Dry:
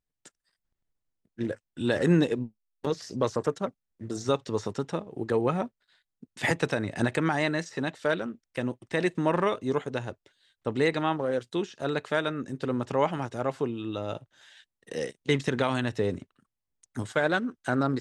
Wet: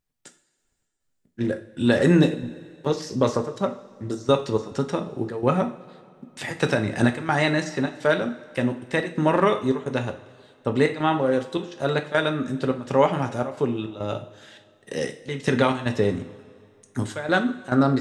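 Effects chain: step gate "xxx.xx.xxxx.x" 105 bpm -12 dB; two-slope reverb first 0.39 s, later 2.3 s, from -17 dB, DRR 5.5 dB; gain +5 dB

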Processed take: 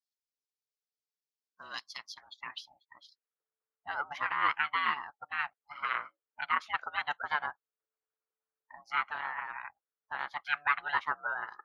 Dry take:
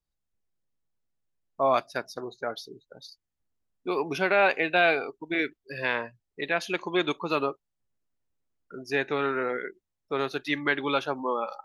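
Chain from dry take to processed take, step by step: ring modulator 440 Hz; harmonic-percussive split harmonic -14 dB; band-pass sweep 5000 Hz -> 1400 Hz, 1.78–3.33; gain +7 dB

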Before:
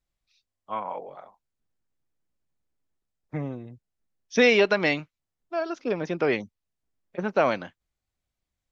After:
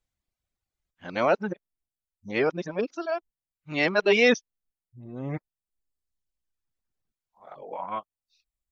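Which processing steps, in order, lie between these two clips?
whole clip reversed; reverb removal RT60 1.3 s

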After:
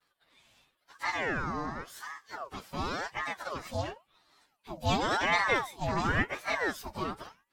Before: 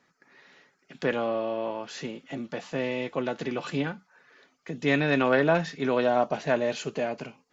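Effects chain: inharmonic rescaling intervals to 123%; vibrato 0.37 Hz 22 cents; ring modulator with a swept carrier 930 Hz, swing 60%, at 0.93 Hz

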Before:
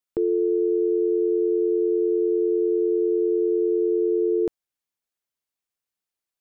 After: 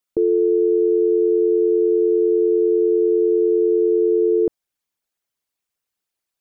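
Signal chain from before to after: formant sharpening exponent 1.5; gain +5 dB

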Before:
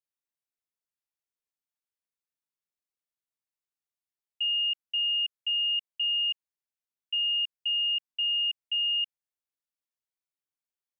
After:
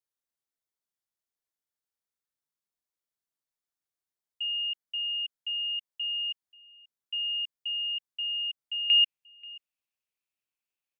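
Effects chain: bell 2600 Hz -5.5 dB 0.37 oct, from 8.9 s +11.5 dB; echo 0.534 s -23.5 dB

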